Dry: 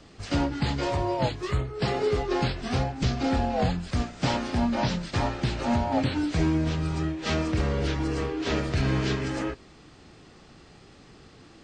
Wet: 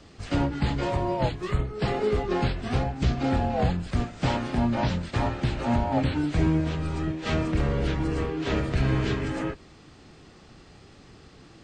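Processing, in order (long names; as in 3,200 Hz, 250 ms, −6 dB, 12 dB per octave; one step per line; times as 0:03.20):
sub-octave generator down 1 octave, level −4 dB
dynamic equaliser 5,400 Hz, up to −7 dB, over −52 dBFS, Q 1.4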